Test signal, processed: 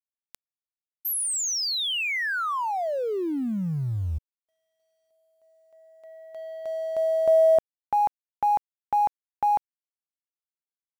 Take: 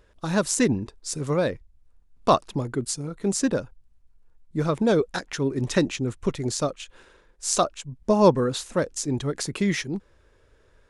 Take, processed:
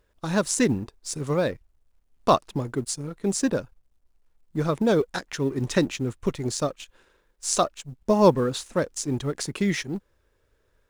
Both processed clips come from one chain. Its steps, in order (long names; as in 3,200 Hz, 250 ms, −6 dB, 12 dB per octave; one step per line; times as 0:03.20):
mu-law and A-law mismatch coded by A